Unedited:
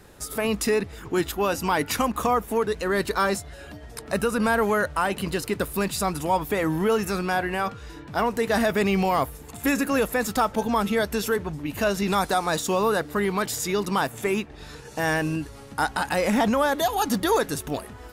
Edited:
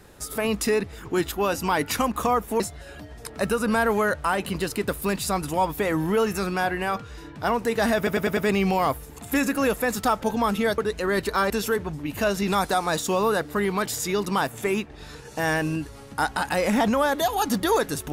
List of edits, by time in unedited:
2.60–3.32 s: move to 11.10 s
8.69 s: stutter 0.10 s, 5 plays

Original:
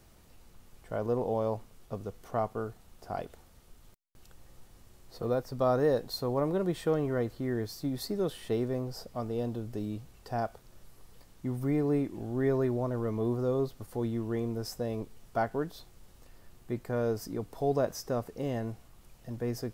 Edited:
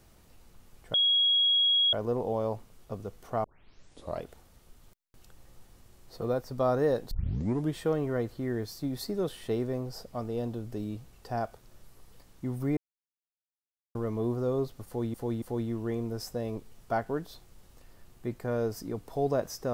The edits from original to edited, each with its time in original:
0.94 s: add tone 3.31 kHz -21 dBFS 0.99 s
2.45 s: tape start 0.79 s
6.12 s: tape start 0.64 s
11.78–12.96 s: mute
13.87–14.15 s: loop, 3 plays

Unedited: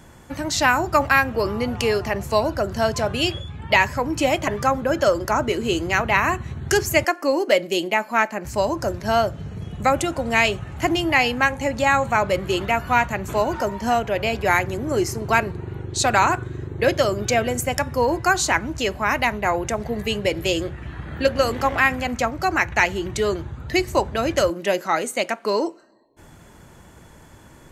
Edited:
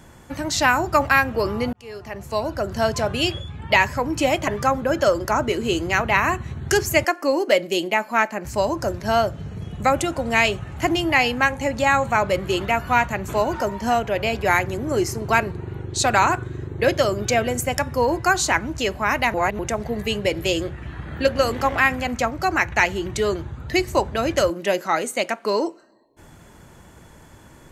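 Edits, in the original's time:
1.73–2.83 s: fade in
19.34–19.59 s: reverse

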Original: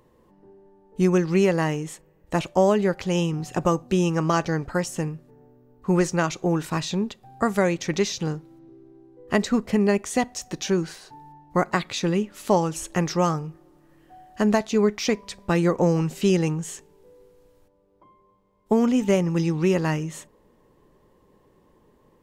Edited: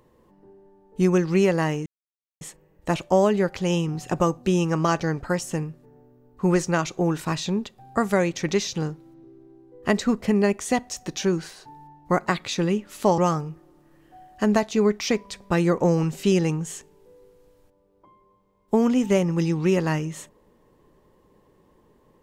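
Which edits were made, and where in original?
1.86 s: insert silence 0.55 s
12.63–13.16 s: delete

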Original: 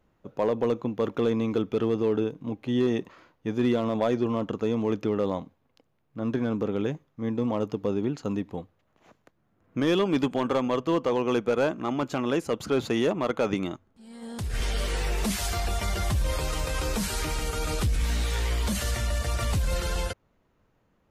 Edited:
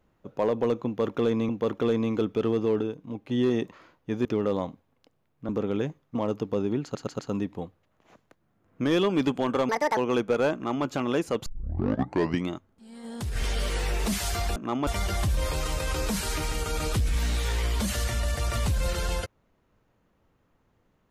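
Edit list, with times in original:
0.86–1.49 s: loop, 2 plays
2.18–2.66 s: gain -3.5 dB
3.62–4.98 s: delete
6.22–6.54 s: delete
7.20–7.47 s: delete
8.15 s: stutter 0.12 s, 4 plays
10.65–11.15 s: speed 179%
11.72–12.03 s: copy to 15.74 s
12.64 s: tape start 1.03 s

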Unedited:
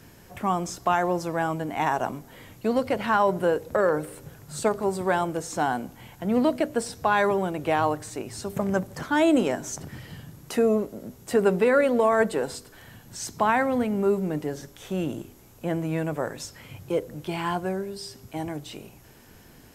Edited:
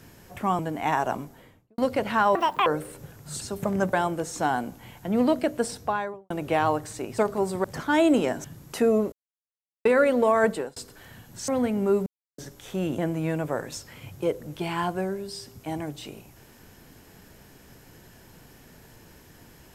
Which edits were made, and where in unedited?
0.59–1.53 s: delete
2.12–2.72 s: studio fade out
3.29–3.89 s: speed 192%
4.64–5.10 s: swap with 8.35–8.87 s
6.86–7.47 s: studio fade out
9.67–10.21 s: delete
10.89–11.62 s: mute
12.28–12.53 s: fade out
13.25–13.65 s: delete
14.23–14.55 s: mute
15.15–15.66 s: delete

